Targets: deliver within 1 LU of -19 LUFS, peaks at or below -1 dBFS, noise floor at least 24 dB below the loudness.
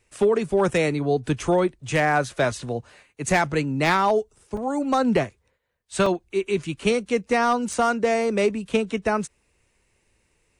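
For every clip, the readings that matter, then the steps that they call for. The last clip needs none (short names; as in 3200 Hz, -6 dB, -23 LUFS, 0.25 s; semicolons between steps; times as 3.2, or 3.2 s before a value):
clipped 0.4%; flat tops at -12.0 dBFS; dropouts 3; longest dropout 3.2 ms; loudness -23.0 LUFS; peak -12.0 dBFS; loudness target -19.0 LUFS
-> clip repair -12 dBFS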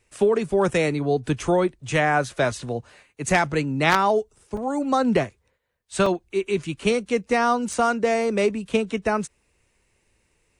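clipped 0.0%; dropouts 3; longest dropout 3.2 ms
-> interpolate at 4.57/6.06/7.73, 3.2 ms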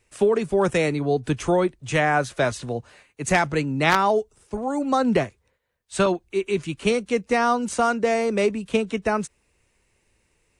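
dropouts 0; loudness -23.0 LUFS; peak -3.0 dBFS; loudness target -19.0 LUFS
-> gain +4 dB; limiter -1 dBFS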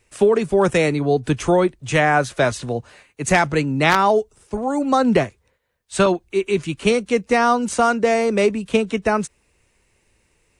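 loudness -19.0 LUFS; peak -1.0 dBFS; noise floor -65 dBFS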